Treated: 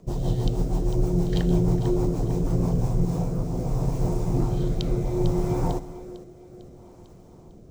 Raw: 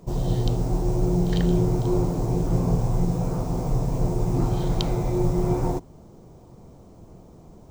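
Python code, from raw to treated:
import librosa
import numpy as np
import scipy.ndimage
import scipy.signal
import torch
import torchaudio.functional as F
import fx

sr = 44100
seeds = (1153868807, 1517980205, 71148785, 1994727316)

y = fx.echo_split(x, sr, split_hz=330.0, low_ms=127, high_ms=450, feedback_pct=52, wet_db=-12.5)
y = fx.rotary_switch(y, sr, hz=6.3, then_hz=0.65, switch_at_s=2.53)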